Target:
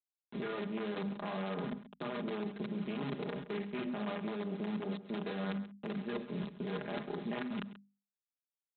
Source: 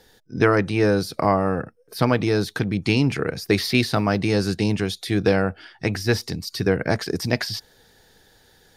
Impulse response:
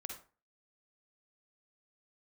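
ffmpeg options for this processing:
-filter_complex "[0:a]lowpass=f=2.9k:p=1[a];[1:a]atrim=start_sample=2205,asetrate=70560,aresample=44100[b];[a][b]afir=irnorm=-1:irlink=0,afwtdn=0.0178,aresample=8000,acrusher=bits=5:dc=4:mix=0:aa=0.000001,aresample=44100,bandreject=f=50:t=h:w=6,bandreject=f=100:t=h:w=6,bandreject=f=150:t=h:w=6,bandreject=f=200:t=h:w=6,bandreject=f=250:t=h:w=6,acrossover=split=120|1500[c][d][e];[c]acompressor=threshold=-46dB:ratio=4[f];[d]acompressor=threshold=-34dB:ratio=4[g];[e]acompressor=threshold=-45dB:ratio=4[h];[f][g][h]amix=inputs=3:normalize=0,highpass=57,aecho=1:1:4.9:0.65,alimiter=level_in=7dB:limit=-24dB:level=0:latency=1:release=54,volume=-7dB,lowshelf=f=140:t=q:w=3:g=-7.5,areverse,acompressor=threshold=-55dB:ratio=6,areverse,aecho=1:1:134:0.188,volume=17.5dB"

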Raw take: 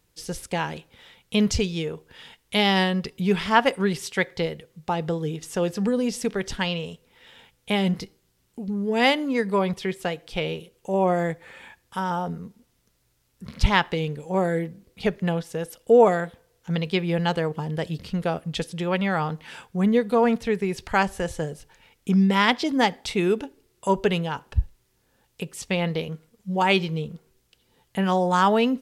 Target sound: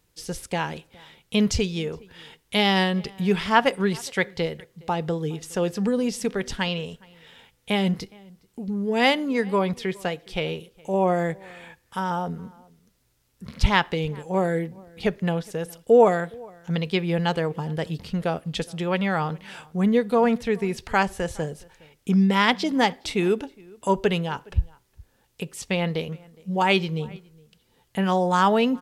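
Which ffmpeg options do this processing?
-filter_complex "[0:a]asplit=2[a][b];[b]adelay=414,volume=-25dB,highshelf=f=4k:g=-9.32[c];[a][c]amix=inputs=2:normalize=0"

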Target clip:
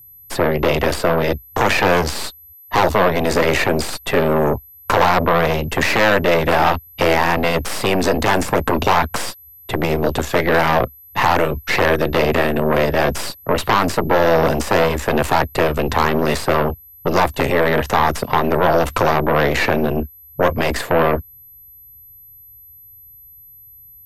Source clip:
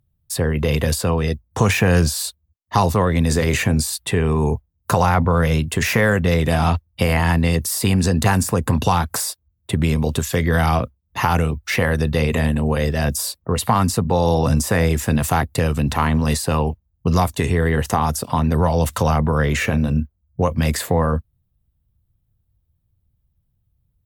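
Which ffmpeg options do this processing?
-filter_complex "[0:a]aeval=exprs='0.708*(cos(1*acos(clip(val(0)/0.708,-1,1)))-cos(1*PI/2))+0.178*(cos(5*acos(clip(val(0)/0.708,-1,1)))-cos(5*PI/2))+0.251*(cos(8*acos(clip(val(0)/0.708,-1,1)))-cos(8*PI/2))':c=same,aemphasis=mode=reproduction:type=75fm,aeval=exprs='val(0)+0.01*sin(2*PI*12000*n/s)':c=same,acrossover=split=270[a][b];[a]asoftclip=type=tanh:threshold=-20.5dB[c];[c][b]amix=inputs=2:normalize=0,volume=-1dB"

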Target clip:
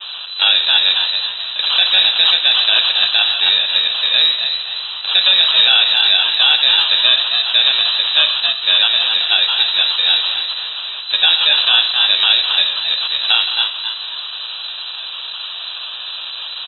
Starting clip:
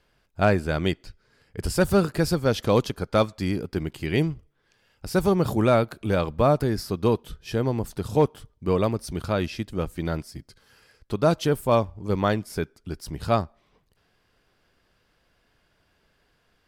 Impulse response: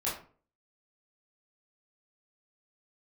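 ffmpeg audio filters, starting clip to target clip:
-filter_complex "[0:a]aeval=exprs='val(0)+0.5*0.0631*sgn(val(0))':c=same,agate=range=-33dB:threshold=-26dB:ratio=3:detection=peak,equalizer=f=74:w=0.65:g=-10.5,acrusher=samples=23:mix=1:aa=0.000001,flanger=delay=3.2:depth=7.2:regen=-33:speed=1.7:shape=sinusoidal,asplit=6[a][b][c][d][e][f];[b]adelay=267,afreqshift=-71,volume=-8dB[g];[c]adelay=534,afreqshift=-142,volume=-15.3dB[h];[d]adelay=801,afreqshift=-213,volume=-22.7dB[i];[e]adelay=1068,afreqshift=-284,volume=-30dB[j];[f]adelay=1335,afreqshift=-355,volume=-37.3dB[k];[a][g][h][i][j][k]amix=inputs=6:normalize=0,asplit=2[l][m];[1:a]atrim=start_sample=2205[n];[m][n]afir=irnorm=-1:irlink=0,volume=-14.5dB[o];[l][o]amix=inputs=2:normalize=0,lowpass=f=3.4k:t=q:w=0.5098,lowpass=f=3.4k:t=q:w=0.6013,lowpass=f=3.4k:t=q:w=0.9,lowpass=f=3.4k:t=q:w=2.563,afreqshift=-4000,alimiter=level_in=14dB:limit=-1dB:release=50:level=0:latency=1,volume=-1dB"

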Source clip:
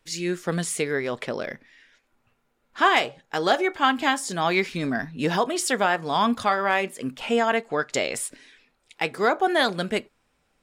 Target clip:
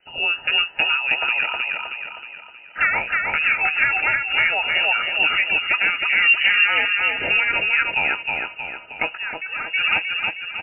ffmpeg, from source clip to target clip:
-filter_complex "[0:a]acompressor=threshold=-28dB:ratio=3,asettb=1/sr,asplit=3[a][b][c];[a]atrim=end=6.224[d];[b]atrim=start=6.22:end=6.65,asetpts=PTS-STARTPTS,afade=t=in:d=0.004:c=qsin,afade=t=out:st=0.426:d=0.004:c=qsin,aemphasis=mode=reproduction:type=riaa[e];[c]atrim=start=6.646[f];[d][e]acrossfade=d=0.004:c1=hsin:c2=qsin[g];[g][f]acrossfade=d=0.004:c1=qsin:c2=hsin,aecho=1:1:315|630|945|1260|1575|1890:0.708|0.34|0.163|0.0783|0.0376|0.018,deesser=0.75,asettb=1/sr,asplit=3[h][i][j];[h]atrim=end=0.694[k];[i]atrim=start=0.69:end=1.44,asetpts=PTS-STARTPTS,afade=t=in:d=0.004:c=qsin,afade=t=out:st=0.746:d=0.004:c=qsin,highpass=130[l];[j]atrim=start=1.436[m];[k][l]acrossfade=d=0.004:c1=hsin:c2=qsin[n];[n][m]acrossfade=d=0.004:c1=qsin:c2=hsin,asettb=1/sr,asplit=3[o][p][q];[o]atrim=end=9.174[r];[p]atrim=start=9.17:end=9.74,asetpts=PTS-STARTPTS,afade=t=in:d=0.004:c=qsin,afade=t=out:st=0.566:d=0.004:c=qsin,equalizer=f=610:t=o:w=2.8:g=-12.5[s];[q]atrim=start=9.736[t];[r][s]acrossfade=d=0.004:c1=hsin:c2=qsin[u];[u][t]acrossfade=d=0.004:c1=qsin:c2=hsin,lowpass=f=2.6k:t=q:w=0.5098,lowpass=f=2.6k:t=q:w=0.6013,lowpass=f=2.6k:t=q:w=0.9,lowpass=f=2.6k:t=q:w=2.563,afreqshift=-3000,asuperstop=centerf=1100:order=20:qfactor=5.2,volume=9dB"

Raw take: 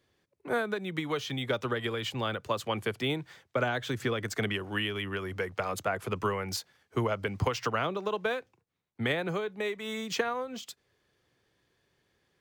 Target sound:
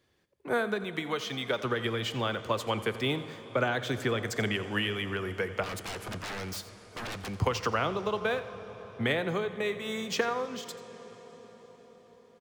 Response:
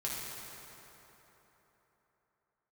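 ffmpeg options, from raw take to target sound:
-filter_complex "[0:a]asettb=1/sr,asplit=3[a][b][c];[a]atrim=end=0.844[d];[b]atrim=start=0.84:end=1.64,asetpts=PTS-STARTPTS,afade=t=in:d=0.004:c=qsin,afade=t=out:st=0.796:d=0.004:c=qsin,lowshelf=f=210:g=-8.5[e];[c]atrim=start=1.636[f];[d][e]acrossfade=d=0.004:c1=hsin:c2=qsin[g];[g][f]acrossfade=d=0.004:c1=qsin:c2=hsin,asettb=1/sr,asplit=3[h][i][j];[h]atrim=end=5.634[k];[i]atrim=start=5.63:end=7.36,asetpts=PTS-STARTPTS,afade=t=in:d=0.004:c=qsin,afade=t=out:st=1.726:d=0.004:c=qsin,aeval=exprs='0.0211*(abs(mod(val(0)/0.0211+3,4)-2)-1)':c=same[l];[j]atrim=start=7.356[m];[k][l]acrossfade=d=0.004:c1=hsin:c2=qsin[n];[n][m]acrossfade=d=0.004:c1=qsin:c2=hsin,aecho=1:1:87:0.15,asplit=2[o][p];[1:a]atrim=start_sample=2205,asetrate=22932,aresample=44100[q];[p][q]afir=irnorm=-1:irlink=0,volume=-19dB[r];[o][r]amix=inputs=2:normalize=0"

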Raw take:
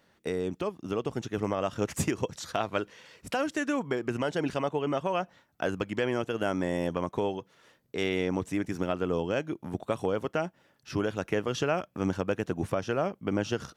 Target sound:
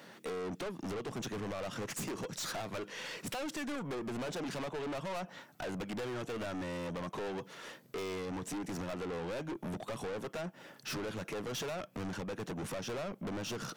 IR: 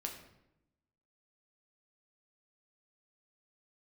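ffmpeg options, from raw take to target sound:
-af "highpass=f=140:w=0.5412,highpass=f=140:w=1.3066,acompressor=threshold=-36dB:ratio=6,aeval=exprs='(tanh(282*val(0)+0.1)-tanh(0.1))/282':c=same,volume=12.5dB"

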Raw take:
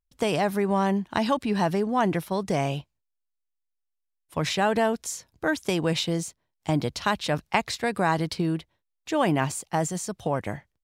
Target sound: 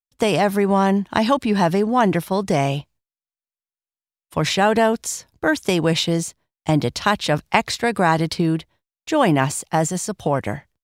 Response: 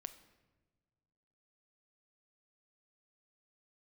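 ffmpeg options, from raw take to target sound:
-af "agate=range=-33dB:threshold=-52dB:ratio=3:detection=peak,volume=6.5dB"

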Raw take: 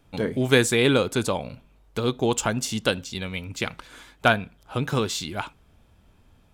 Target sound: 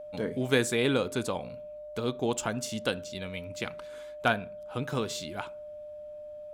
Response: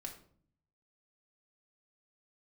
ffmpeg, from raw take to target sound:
-filter_complex "[0:a]lowshelf=f=67:g=-8,aeval=exprs='val(0)+0.0224*sin(2*PI*600*n/s)':c=same,asplit=2[a][b];[1:a]atrim=start_sample=2205,lowpass=2.1k[c];[b][c]afir=irnorm=-1:irlink=0,volume=-10.5dB[d];[a][d]amix=inputs=2:normalize=0,volume=-7.5dB"

